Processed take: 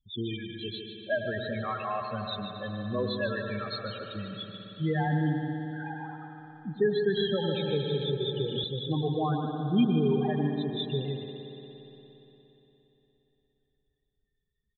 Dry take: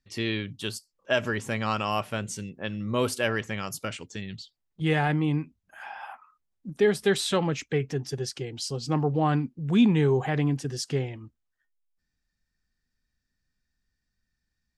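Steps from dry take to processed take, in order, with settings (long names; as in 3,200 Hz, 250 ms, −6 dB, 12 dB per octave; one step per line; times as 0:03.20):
hearing-aid frequency compression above 3,100 Hz 4 to 1
reverb reduction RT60 1.7 s
in parallel at +2.5 dB: downward compressor, threshold −34 dBFS, peak gain reduction 17 dB
on the sum: spectral peaks only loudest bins 8
single-tap delay 149 ms −9 dB
on a send at −3.5 dB: convolution reverb RT60 3.6 s, pre-delay 98 ms
0:07.17–0:08.64: on the sum: multiband upward and downward compressor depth 100%
level −5.5 dB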